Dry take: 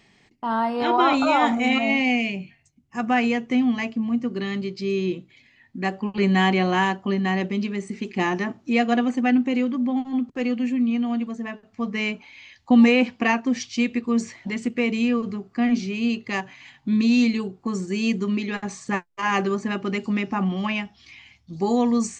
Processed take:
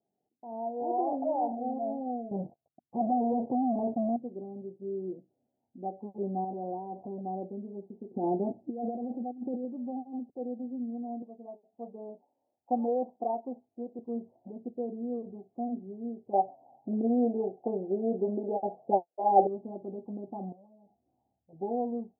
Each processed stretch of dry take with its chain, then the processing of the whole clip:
0:02.31–0:04.16: treble cut that deepens with the level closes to 650 Hz, closed at −17 dBFS + leveller curve on the samples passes 5
0:06.44–0:07.21: downward compressor 2.5 to 1, threshold −35 dBFS + leveller curve on the samples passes 3
0:08.11–0:09.65: tilt shelving filter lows +6.5 dB, about 1,200 Hz + compressor whose output falls as the input rises −19 dBFS, ratio −0.5
0:11.22–0:13.99: high-pass filter 340 Hz 6 dB per octave + dynamic equaliser 1,000 Hz, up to +7 dB, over −38 dBFS, Q 0.93
0:16.33–0:19.47: low-pass with resonance 780 Hz, resonance Q 2.6 + parametric band 540 Hz +10 dB 2.1 octaves
0:20.52–0:21.53: downward compressor 8 to 1, threshold −38 dBFS + saturating transformer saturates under 620 Hz
whole clip: Butterworth low-pass 770 Hz 72 dB per octave; first difference; automatic gain control gain up to 11 dB; level +4 dB

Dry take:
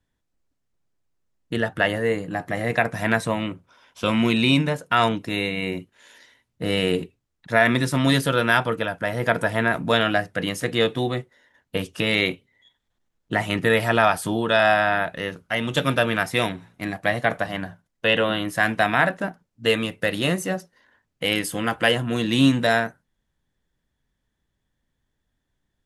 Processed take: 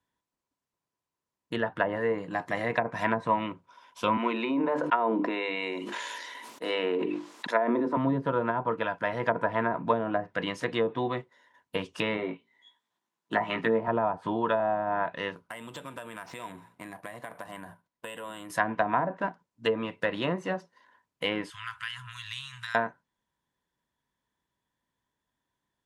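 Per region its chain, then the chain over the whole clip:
0:01.91–0:03.36: high-shelf EQ 4,800 Hz +11 dB + one half of a high-frequency compander decoder only
0:04.17–0:07.97: high-pass filter 260 Hz 24 dB per octave + mains-hum notches 50/100/150/200/250/300/350 Hz + level that may fall only so fast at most 20 dB per second
0:12.17–0:13.88: high-pass filter 180 Hz + parametric band 510 Hz −6.5 dB 0.24 octaves + double-tracking delay 18 ms −3.5 dB
0:15.32–0:18.50: high-shelf EQ 4,200 Hz −7 dB + downward compressor 12 to 1, threshold −32 dBFS + bad sample-rate conversion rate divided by 4×, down none, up hold
0:21.50–0:22.75: parametric band 200 Hz −12 dB 0.29 octaves + downward compressor 5 to 1, threshold −25 dBFS + elliptic band-stop filter 110–1,300 Hz, stop band 50 dB
whole clip: treble cut that deepens with the level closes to 580 Hz, closed at −15 dBFS; high-pass filter 230 Hz 6 dB per octave; parametric band 990 Hz +13.5 dB 0.2 octaves; level −4 dB

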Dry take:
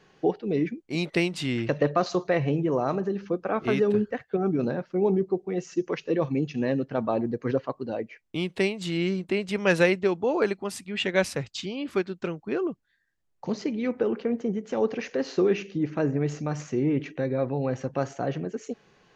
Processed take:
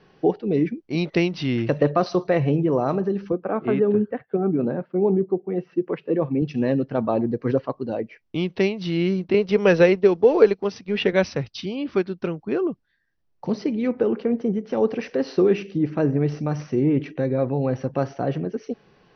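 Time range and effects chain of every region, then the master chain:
0:03.32–0:06.42: high-pass filter 140 Hz + high-frequency loss of the air 450 metres
0:09.34–0:11.13: mu-law and A-law mismatch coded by A + parametric band 450 Hz +10.5 dB 0.28 octaves + multiband upward and downward compressor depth 40%
whole clip: Chebyshev low-pass filter 6,000 Hz, order 10; tilt shelving filter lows +3 dB, about 720 Hz; level +3.5 dB

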